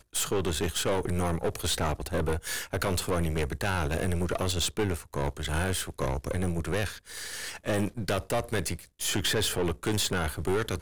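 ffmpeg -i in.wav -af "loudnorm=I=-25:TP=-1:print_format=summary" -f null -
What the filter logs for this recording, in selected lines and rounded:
Input Integrated:    -29.8 LUFS
Input True Peak:     -18.5 dBTP
Input LRA:             2.7 LU
Input Threshold:     -39.8 LUFS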